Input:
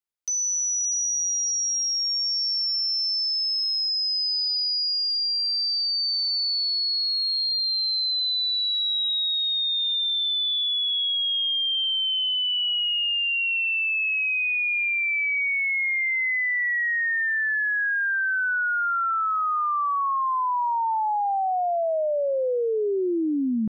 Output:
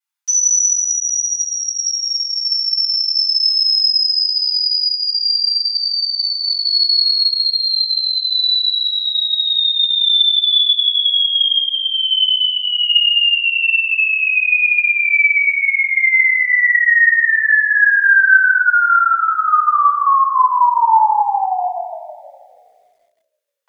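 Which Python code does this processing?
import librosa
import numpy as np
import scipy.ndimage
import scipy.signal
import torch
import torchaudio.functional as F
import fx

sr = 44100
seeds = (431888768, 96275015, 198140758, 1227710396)

p1 = x + fx.echo_feedback(x, sr, ms=249, feedback_pct=53, wet_db=-16.0, dry=0)
p2 = fx.vibrato(p1, sr, rate_hz=13.0, depth_cents=14.0)
p3 = scipy.signal.sosfilt(scipy.signal.butter(12, 790.0, 'highpass', fs=sr, output='sos'), p2)
p4 = fx.dynamic_eq(p3, sr, hz=1300.0, q=0.8, threshold_db=-39.0, ratio=4.0, max_db=3)
p5 = fx.rider(p4, sr, range_db=4, speed_s=0.5)
p6 = p4 + (p5 * librosa.db_to_amplitude(0.5))
p7 = fx.high_shelf(p6, sr, hz=fx.line((0.79, 2900.0), (1.77, 4000.0)), db=-3.0, at=(0.79, 1.77), fade=0.02)
p8 = fx.room_shoebox(p7, sr, seeds[0], volume_m3=45.0, walls='mixed', distance_m=3.3)
p9 = fx.echo_crushed(p8, sr, ms=160, feedback_pct=35, bits=8, wet_db=-8.5)
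y = p9 * librosa.db_to_amplitude(-12.5)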